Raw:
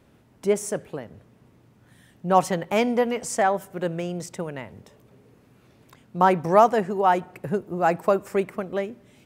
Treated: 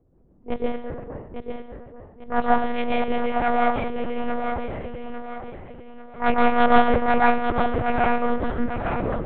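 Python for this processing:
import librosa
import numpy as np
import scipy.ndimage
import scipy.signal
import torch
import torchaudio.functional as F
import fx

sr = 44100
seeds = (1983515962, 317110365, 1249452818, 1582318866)

p1 = fx.tape_stop_end(x, sr, length_s=1.19)
p2 = fx.transient(p1, sr, attack_db=-12, sustain_db=1)
p3 = fx.env_lowpass(p2, sr, base_hz=470.0, full_db=-20.0)
p4 = fx.cheby_harmonics(p3, sr, harmonics=(4,), levels_db=(-10,), full_scale_db=-5.5)
p5 = p4 + fx.echo_feedback(p4, sr, ms=848, feedback_pct=39, wet_db=-7, dry=0)
p6 = fx.rev_plate(p5, sr, seeds[0], rt60_s=0.64, hf_ratio=0.85, predelay_ms=115, drr_db=-3.5)
p7 = fx.lpc_monotone(p6, sr, seeds[1], pitch_hz=240.0, order=8)
y = p7 * librosa.db_to_amplitude(-2.0)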